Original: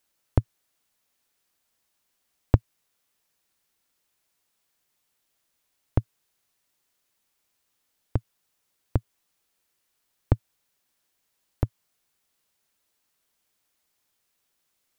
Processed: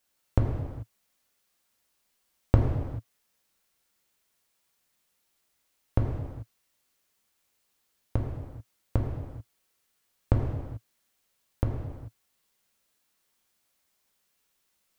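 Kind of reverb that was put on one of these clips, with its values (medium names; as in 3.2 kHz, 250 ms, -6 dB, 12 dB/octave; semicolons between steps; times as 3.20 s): gated-style reverb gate 460 ms falling, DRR -1 dB; trim -2.5 dB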